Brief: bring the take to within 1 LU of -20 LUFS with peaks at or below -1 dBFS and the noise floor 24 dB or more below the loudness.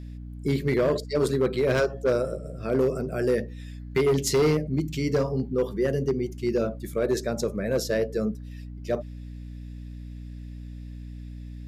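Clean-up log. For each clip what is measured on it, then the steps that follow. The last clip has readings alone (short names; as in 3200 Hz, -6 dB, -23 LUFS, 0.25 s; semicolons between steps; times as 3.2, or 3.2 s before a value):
clipped 1.3%; flat tops at -17.0 dBFS; hum 60 Hz; harmonics up to 300 Hz; hum level -36 dBFS; loudness -26.0 LUFS; peak -17.0 dBFS; loudness target -20.0 LUFS
-> clip repair -17 dBFS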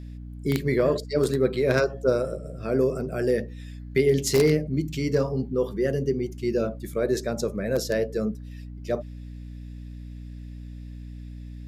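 clipped 0.0%; hum 60 Hz; harmonics up to 300 Hz; hum level -36 dBFS
-> notches 60/120/180/240/300 Hz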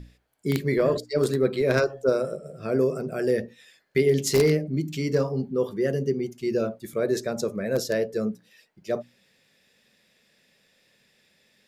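hum none; loudness -25.5 LUFS; peak -7.5 dBFS; loudness target -20.0 LUFS
-> gain +5.5 dB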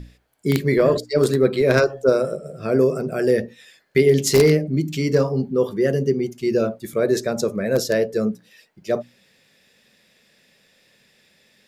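loudness -20.0 LUFS; peak -2.0 dBFS; noise floor -60 dBFS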